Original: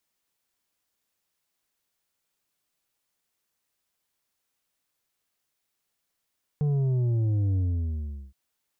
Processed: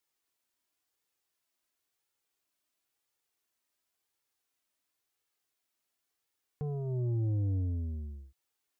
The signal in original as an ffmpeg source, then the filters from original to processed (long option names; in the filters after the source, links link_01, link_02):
-f lavfi -i "aevalsrc='0.075*clip((1.72-t)/0.77,0,1)*tanh(2.11*sin(2*PI*150*1.72/log(65/150)*(exp(log(65/150)*t/1.72)-1)))/tanh(2.11)':duration=1.72:sample_rate=44100"
-af "lowshelf=frequency=80:gain=-7.5,flanger=delay=2.2:depth=1.1:regen=-34:speed=0.95:shape=triangular"